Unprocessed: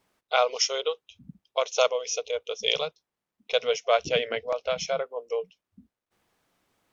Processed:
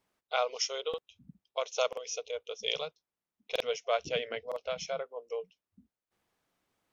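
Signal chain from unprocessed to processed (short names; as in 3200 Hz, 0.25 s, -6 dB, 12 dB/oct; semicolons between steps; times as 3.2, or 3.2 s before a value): stuck buffer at 0.89/1.88/3.51/4.47, samples 2048, times 1; gain -7.5 dB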